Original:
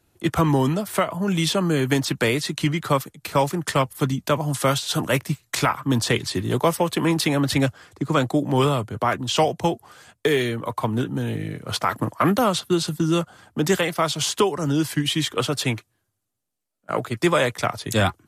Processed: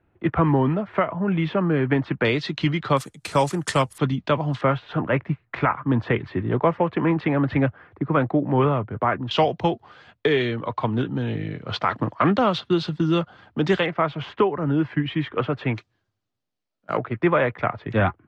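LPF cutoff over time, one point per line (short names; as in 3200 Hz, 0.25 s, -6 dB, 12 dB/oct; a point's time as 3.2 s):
LPF 24 dB/oct
2300 Hz
from 2.25 s 4100 Hz
from 2.97 s 9800 Hz
from 3.98 s 3700 Hz
from 4.61 s 2200 Hz
from 9.31 s 3900 Hz
from 13.86 s 2300 Hz
from 15.75 s 5100 Hz
from 16.97 s 2300 Hz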